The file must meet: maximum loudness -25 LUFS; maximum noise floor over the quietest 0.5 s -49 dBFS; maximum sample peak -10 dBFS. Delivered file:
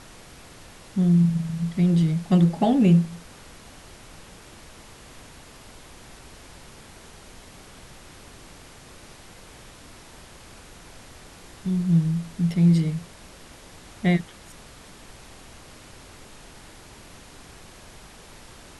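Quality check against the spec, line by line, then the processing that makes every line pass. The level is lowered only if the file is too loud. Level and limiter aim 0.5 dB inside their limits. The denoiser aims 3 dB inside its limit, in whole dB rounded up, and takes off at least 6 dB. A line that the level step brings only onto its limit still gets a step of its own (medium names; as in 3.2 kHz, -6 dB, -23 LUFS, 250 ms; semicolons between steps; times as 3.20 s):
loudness -22.0 LUFS: fail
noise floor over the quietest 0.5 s -46 dBFS: fail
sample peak -8.0 dBFS: fail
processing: trim -3.5 dB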